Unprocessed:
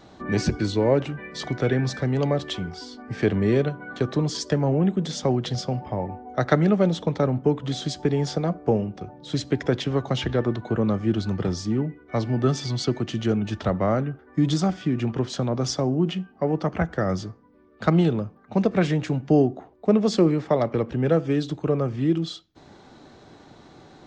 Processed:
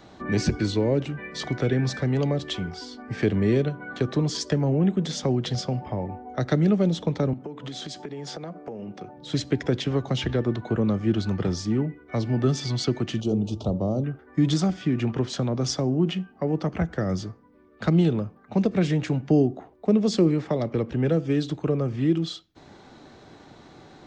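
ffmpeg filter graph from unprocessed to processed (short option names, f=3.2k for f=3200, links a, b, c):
-filter_complex "[0:a]asettb=1/sr,asplit=3[a][b][c];[a]atrim=end=7.334[d];[b]atrim=start=7.33:end=9.17,asetpts=PTS-STARTPTS,afade=t=in:d=0.004:c=qsin,afade=t=out:st=1.836:d=0.004:c=qsin,highpass=170,acompressor=threshold=-31dB:ratio=16:attack=3.2:release=140:knee=1:detection=peak[e];[c]atrim=start=9.166[f];[d][e]acrossfade=d=0.004:c1=hsin:c2=qsin[g];[g][f]acrossfade=d=0.004:c1=qsin:c2=hsin,asettb=1/sr,asplit=3[h][i][j];[h]atrim=end=13.204[k];[i]atrim=start=13.2:end=14.04,asetpts=PTS-STARTPTS,afade=t=in:d=0.004:c=qsin,afade=t=out:st=0.836:d=0.004:c=qsin,asuperstop=centerf=1800:order=4:qfactor=0.62,bandreject=f=113.1:t=h:w=4,bandreject=f=226.2:t=h:w=4,bandreject=f=339.3:t=h:w=4,bandreject=f=452.4:t=h:w=4,bandreject=f=565.5:t=h:w=4[l];[j]atrim=start=14.036[m];[k][l]acrossfade=d=0.004:c1=hsin:c2=qsin[n];[n][m]acrossfade=d=0.004:c1=qsin:c2=hsin,acrossover=split=470|3000[o][p][q];[p]acompressor=threshold=-33dB:ratio=6[r];[o][r][q]amix=inputs=3:normalize=0,equalizer=f=2.2k:w=1.5:g=2"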